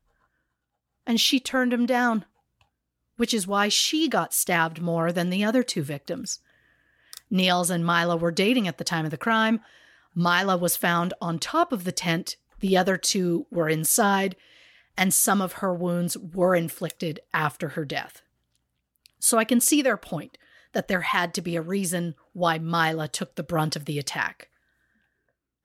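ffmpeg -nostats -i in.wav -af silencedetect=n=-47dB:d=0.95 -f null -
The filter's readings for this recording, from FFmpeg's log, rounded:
silence_start: 0.00
silence_end: 1.07 | silence_duration: 1.07
silence_start: 24.44
silence_end: 25.65 | silence_duration: 1.21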